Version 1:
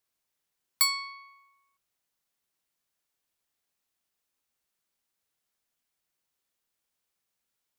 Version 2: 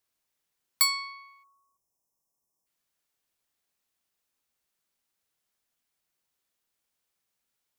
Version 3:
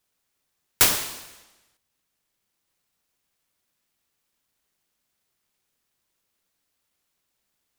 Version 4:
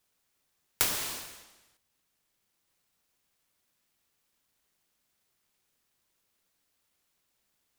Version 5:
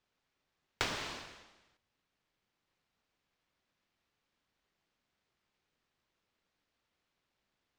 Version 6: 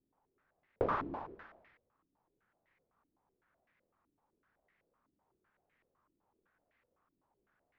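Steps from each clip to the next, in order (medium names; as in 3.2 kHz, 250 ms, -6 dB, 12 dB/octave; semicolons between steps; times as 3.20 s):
spectral selection erased 1.43–2.66 s, 1.2–5 kHz; trim +1 dB
delay time shaken by noise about 2 kHz, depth 0.45 ms; trim +6.5 dB
compression 4:1, threshold -26 dBFS, peak gain reduction 11.5 dB
distance through air 160 m
step-sequenced low-pass 7.9 Hz 300–2000 Hz; trim +2 dB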